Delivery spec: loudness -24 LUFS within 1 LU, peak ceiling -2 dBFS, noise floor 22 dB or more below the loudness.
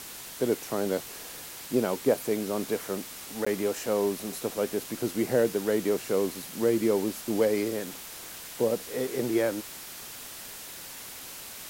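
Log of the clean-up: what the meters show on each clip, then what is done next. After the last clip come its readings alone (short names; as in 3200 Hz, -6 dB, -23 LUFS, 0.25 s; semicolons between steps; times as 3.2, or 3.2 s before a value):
dropouts 1; longest dropout 15 ms; noise floor -43 dBFS; noise floor target -52 dBFS; loudness -30.0 LUFS; peak -10.5 dBFS; loudness target -24.0 LUFS
-> interpolate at 3.45, 15 ms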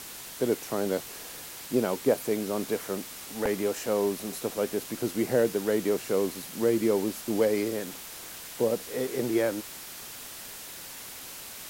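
dropouts 0; noise floor -43 dBFS; noise floor target -52 dBFS
-> denoiser 9 dB, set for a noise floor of -43 dBFS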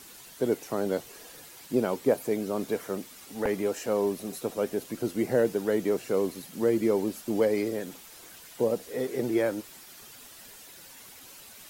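noise floor -49 dBFS; noise floor target -51 dBFS
-> denoiser 6 dB, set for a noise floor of -49 dBFS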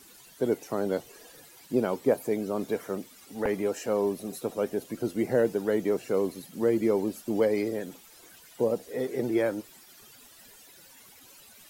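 noise floor -54 dBFS; loudness -29.0 LUFS; peak -11.0 dBFS; loudness target -24.0 LUFS
-> gain +5 dB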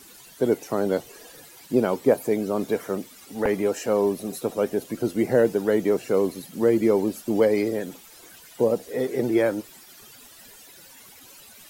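loudness -24.0 LUFS; peak -6.0 dBFS; noise floor -49 dBFS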